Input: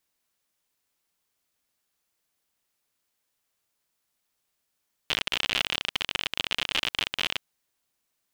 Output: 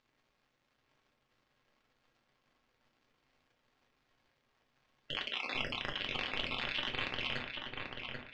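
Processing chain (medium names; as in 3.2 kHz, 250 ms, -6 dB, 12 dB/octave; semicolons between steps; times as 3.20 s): random holes in the spectrogram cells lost 39%; 5.13–5.55 s: high-pass 290 Hz 12 dB/octave; in parallel at -1.5 dB: compressor with a negative ratio -40 dBFS, ratio -1; on the sum: crackle 240 per s -48 dBFS; distance through air 190 m; filtered feedback delay 788 ms, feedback 46%, low-pass 2.6 kHz, level -3 dB; on a send at -2 dB: reverberation RT60 0.30 s, pre-delay 4 ms; on the sum: trim -8 dB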